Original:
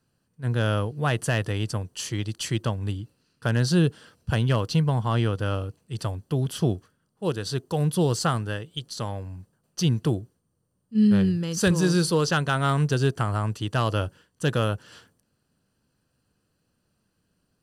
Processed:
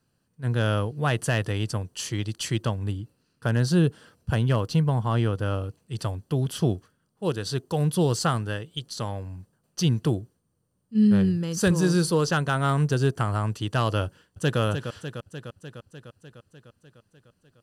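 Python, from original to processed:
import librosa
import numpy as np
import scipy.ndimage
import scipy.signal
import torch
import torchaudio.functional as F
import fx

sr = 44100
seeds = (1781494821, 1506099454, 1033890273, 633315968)

y = fx.peak_eq(x, sr, hz=4000.0, db=-4.0, octaves=2.3, at=(2.83, 5.64))
y = fx.peak_eq(y, sr, hz=3400.0, db=-3.5, octaves=1.7, at=(10.98, 13.2))
y = fx.echo_throw(y, sr, start_s=14.06, length_s=0.54, ms=300, feedback_pct=70, wet_db=-8.0)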